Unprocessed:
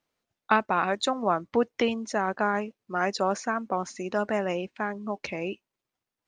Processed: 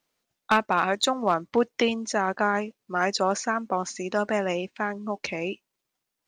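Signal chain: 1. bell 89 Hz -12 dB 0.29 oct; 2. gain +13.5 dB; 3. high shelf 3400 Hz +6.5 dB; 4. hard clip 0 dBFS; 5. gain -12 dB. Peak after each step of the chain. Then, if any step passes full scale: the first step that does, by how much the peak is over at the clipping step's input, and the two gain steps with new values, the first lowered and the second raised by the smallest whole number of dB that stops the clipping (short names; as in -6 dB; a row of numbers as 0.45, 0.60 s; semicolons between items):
-5.5, +8.0, +8.5, 0.0, -12.0 dBFS; step 2, 8.5 dB; step 2 +4.5 dB, step 5 -3 dB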